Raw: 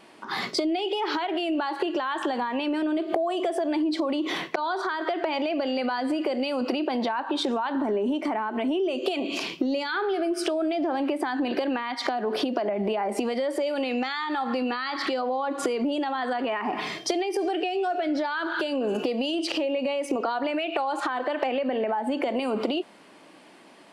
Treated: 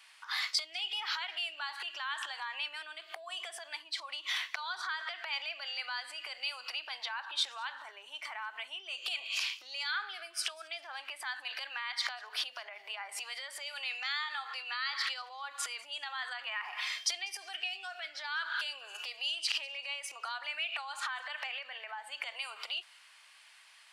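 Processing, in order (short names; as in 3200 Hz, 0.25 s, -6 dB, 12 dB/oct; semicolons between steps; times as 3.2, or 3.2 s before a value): Bessel high-pass 1900 Hz, order 4; on a send: thin delay 0.197 s, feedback 31%, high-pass 4100 Hz, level -22 dB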